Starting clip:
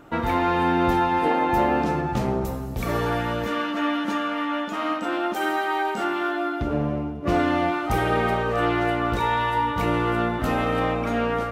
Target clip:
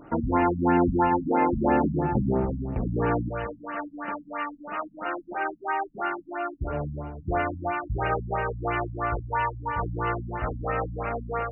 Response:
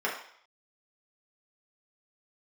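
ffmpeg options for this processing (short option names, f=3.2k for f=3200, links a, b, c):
-af "asetnsamples=n=441:p=0,asendcmd='3.29 equalizer g -15',equalizer=f=250:t=o:w=1.1:g=2,afftfilt=real='re*lt(b*sr/1024,250*pow(3000/250,0.5+0.5*sin(2*PI*3*pts/sr)))':imag='im*lt(b*sr/1024,250*pow(3000/250,0.5+0.5*sin(2*PI*3*pts/sr)))':win_size=1024:overlap=0.75"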